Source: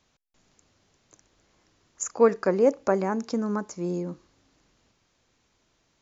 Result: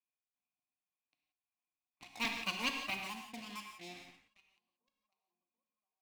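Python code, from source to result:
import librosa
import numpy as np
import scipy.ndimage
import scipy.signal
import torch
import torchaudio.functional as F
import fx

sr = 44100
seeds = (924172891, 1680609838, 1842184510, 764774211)

y = fx.lower_of_two(x, sr, delay_ms=0.34)
y = fx.echo_tape(y, sr, ms=735, feedback_pct=55, wet_db=-18, lp_hz=1600.0, drive_db=10.0, wow_cents=8)
y = fx.dereverb_blind(y, sr, rt60_s=2.0)
y = fx.formant_cascade(y, sr, vowel='a')
y = fx.tilt_eq(y, sr, slope=4.0)
y = fx.leveller(y, sr, passes=3)
y = fx.curve_eq(y, sr, hz=(110.0, 260.0, 430.0, 680.0, 1200.0, 2500.0), db=(0, 5, -14, -18, -9, 9))
y = fx.rev_gated(y, sr, seeds[0], gate_ms=200, shape='flat', drr_db=3.0)
y = y * 10.0 ** (1.0 / 20.0)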